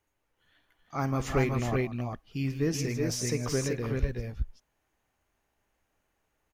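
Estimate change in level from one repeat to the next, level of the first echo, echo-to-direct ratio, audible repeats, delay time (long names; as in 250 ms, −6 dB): repeats not evenly spaced, −16.5 dB, −2.0 dB, 3, 52 ms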